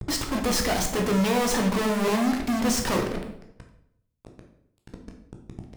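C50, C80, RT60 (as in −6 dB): 6.5 dB, 10.0 dB, 0.75 s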